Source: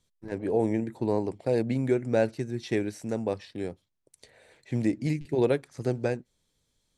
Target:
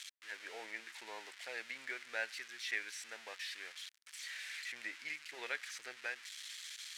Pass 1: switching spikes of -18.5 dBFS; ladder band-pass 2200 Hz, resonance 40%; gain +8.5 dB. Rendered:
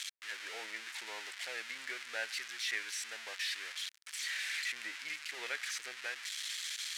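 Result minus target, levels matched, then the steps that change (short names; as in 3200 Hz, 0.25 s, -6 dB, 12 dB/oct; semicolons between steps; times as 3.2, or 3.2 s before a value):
switching spikes: distortion +8 dB
change: switching spikes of -26.5 dBFS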